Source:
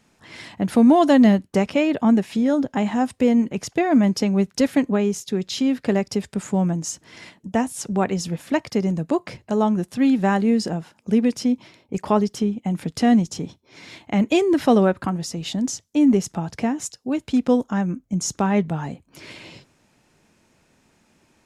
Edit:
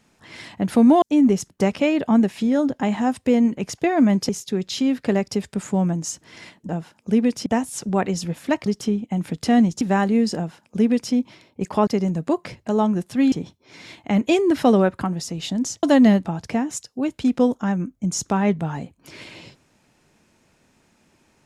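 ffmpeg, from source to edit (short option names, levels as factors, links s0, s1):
-filter_complex "[0:a]asplit=12[s0][s1][s2][s3][s4][s5][s6][s7][s8][s9][s10][s11];[s0]atrim=end=1.022[s12];[s1]atrim=start=15.858:end=16.342[s13];[s2]atrim=start=1.438:end=4.232[s14];[s3]atrim=start=5.088:end=7.492[s15];[s4]atrim=start=10.688:end=11.462[s16];[s5]atrim=start=7.488:end=8.692[s17];[s6]atrim=start=12.198:end=13.352[s18];[s7]atrim=start=10.138:end=12.202[s19];[s8]atrim=start=8.688:end=10.142[s20];[s9]atrim=start=13.348:end=15.862[s21];[s10]atrim=start=1.018:end=1.442[s22];[s11]atrim=start=16.338[s23];[s12][s13]acrossfade=d=0.004:c1=hsin:c2=hsin[s24];[s24][s14]acrossfade=d=0.004:c1=hsin:c2=hsin[s25];[s25][s15]acrossfade=d=0.004:c1=hsin:c2=hsin[s26];[s26][s16]acrossfade=d=0.004:c1=hsin:c2=hsin[s27];[s27][s17]acrossfade=d=0.004:c1=hsin:c2=hsin[s28];[s28][s18]acrossfade=d=0.004:c1=hsin:c2=hsin[s29];[s29][s19]acrossfade=d=0.004:c1=hsin:c2=hsin[s30];[s30][s20]acrossfade=d=0.004:c1=hsin:c2=hsin[s31];[s31][s21]acrossfade=d=0.004:c1=hsin:c2=hsin[s32];[s32][s22]acrossfade=d=0.004:c1=hsin:c2=hsin[s33];[s33][s23]acrossfade=d=0.004:c1=hsin:c2=hsin"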